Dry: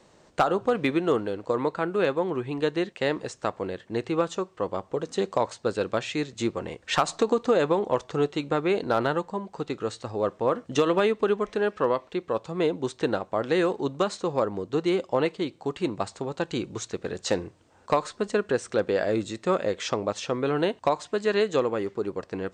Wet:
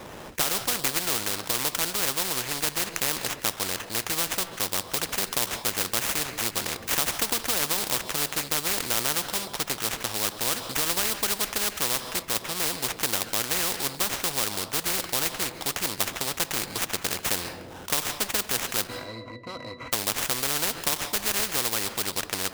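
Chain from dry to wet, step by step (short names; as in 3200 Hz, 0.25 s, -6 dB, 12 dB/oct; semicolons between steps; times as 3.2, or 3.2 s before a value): sample-rate reducer 4500 Hz, jitter 20%; 18.87–19.93 octave resonator B, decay 0.12 s; on a send at -22 dB: reverb RT60 0.85 s, pre-delay 0.13 s; on the sum: spectral compressor 4:1; gain +7.5 dB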